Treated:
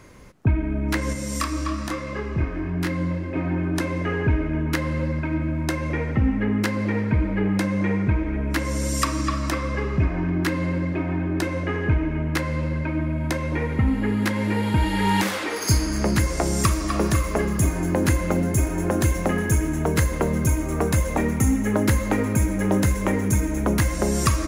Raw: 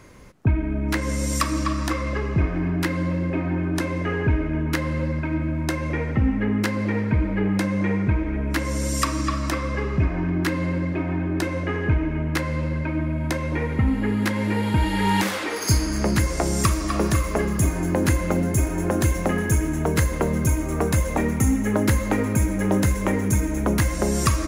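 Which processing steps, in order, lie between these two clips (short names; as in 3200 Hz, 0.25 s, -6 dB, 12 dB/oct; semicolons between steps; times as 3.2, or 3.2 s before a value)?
1.13–3.36 chorus 1.1 Hz, depth 3.9 ms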